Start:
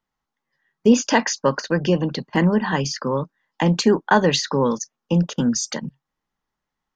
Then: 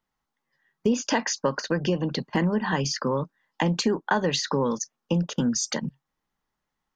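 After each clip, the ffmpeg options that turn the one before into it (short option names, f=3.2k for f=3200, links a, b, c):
-af "acompressor=threshold=-22dB:ratio=3"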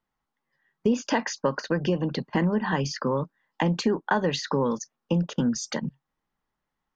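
-af "highshelf=f=5.3k:g=-11"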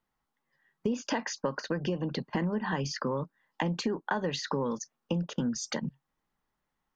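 -af "acompressor=threshold=-32dB:ratio=2"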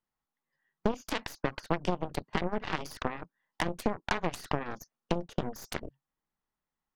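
-af "aeval=exprs='0.178*(cos(1*acos(clip(val(0)/0.178,-1,1)))-cos(1*PI/2))+0.0398*(cos(4*acos(clip(val(0)/0.178,-1,1)))-cos(4*PI/2))+0.0355*(cos(7*acos(clip(val(0)/0.178,-1,1)))-cos(7*PI/2))':c=same"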